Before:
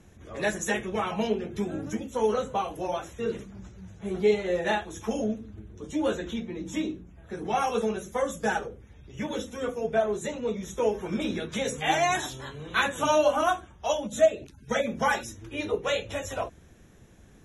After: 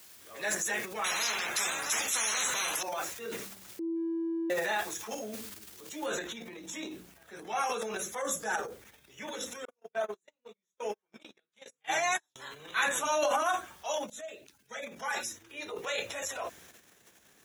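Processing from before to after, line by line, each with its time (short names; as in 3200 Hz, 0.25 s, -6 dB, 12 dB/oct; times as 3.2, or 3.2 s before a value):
1.04–2.83 spectral compressor 10:1
3.79–4.5 bleep 331 Hz -17.5 dBFS
6.06 noise floor step -54 dB -69 dB
8.21–8.72 bell 2600 Hz -5.5 dB 1.3 oct
9.65–12.36 gate -26 dBFS, range -53 dB
14.1–16.14 fade in, from -19.5 dB
whole clip: transient shaper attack -3 dB, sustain +10 dB; dynamic EQ 3100 Hz, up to -7 dB, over -51 dBFS, Q 4.2; HPF 1300 Hz 6 dB/oct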